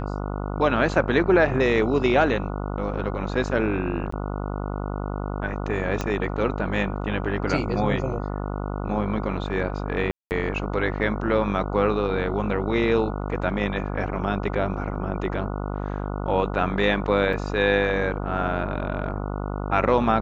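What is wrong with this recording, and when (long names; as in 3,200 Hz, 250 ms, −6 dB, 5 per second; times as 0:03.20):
mains buzz 50 Hz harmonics 29 −29 dBFS
0:04.11–0:04.12: drop-out 14 ms
0:06.01: click −12 dBFS
0:10.11–0:10.31: drop-out 199 ms
0:17.33: drop-out 4.4 ms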